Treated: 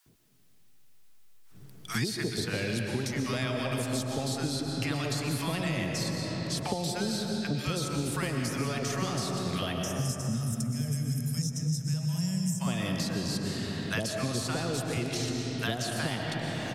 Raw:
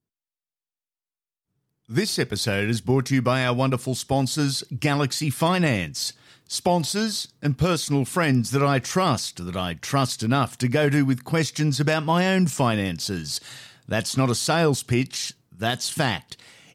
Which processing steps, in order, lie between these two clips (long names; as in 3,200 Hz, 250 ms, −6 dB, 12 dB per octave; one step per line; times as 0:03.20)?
gain on a spectral selection 0:09.75–0:12.61, 240–5,000 Hz −22 dB
downward compressor, threshold −22 dBFS, peak gain reduction 7.5 dB
multiband delay without the direct sound highs, lows 60 ms, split 900 Hz
comb and all-pass reverb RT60 3.3 s, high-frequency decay 0.45×, pre-delay 80 ms, DRR 2 dB
multiband upward and downward compressor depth 100%
level −6.5 dB